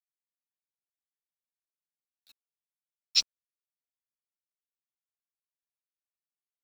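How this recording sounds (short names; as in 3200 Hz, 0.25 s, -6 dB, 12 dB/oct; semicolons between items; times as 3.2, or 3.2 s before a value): a quantiser's noise floor 8-bit, dither none; chopped level 1.6 Hz, depth 60%, duty 55%; a shimmering, thickened sound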